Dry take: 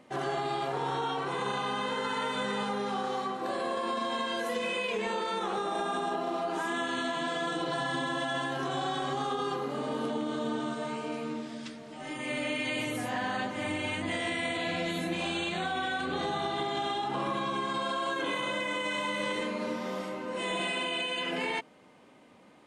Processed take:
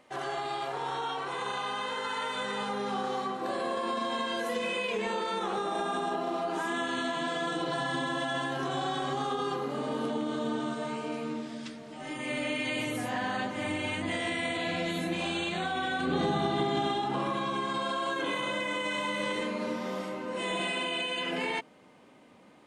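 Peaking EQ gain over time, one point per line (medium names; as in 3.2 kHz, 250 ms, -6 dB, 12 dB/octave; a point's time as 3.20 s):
peaking EQ 190 Hz 2.1 oct
2.27 s -9.5 dB
2.95 s +1 dB
15.74 s +1 dB
16.24 s +10 dB
16.83 s +10 dB
17.31 s +1 dB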